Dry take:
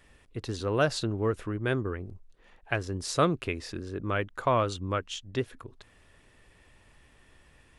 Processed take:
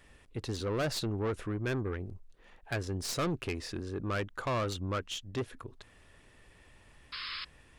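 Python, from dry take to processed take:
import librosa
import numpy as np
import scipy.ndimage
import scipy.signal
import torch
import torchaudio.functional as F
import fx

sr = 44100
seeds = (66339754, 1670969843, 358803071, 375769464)

y = fx.tracing_dist(x, sr, depth_ms=0.04)
y = 10.0 ** (-27.5 / 20.0) * np.tanh(y / 10.0 ** (-27.5 / 20.0))
y = fx.spec_paint(y, sr, seeds[0], shape='noise', start_s=7.12, length_s=0.33, low_hz=1000.0, high_hz=5300.0, level_db=-40.0)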